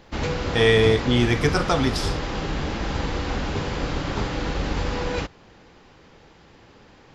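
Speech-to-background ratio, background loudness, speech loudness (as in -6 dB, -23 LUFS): 7.0 dB, -27.5 LUFS, -20.5 LUFS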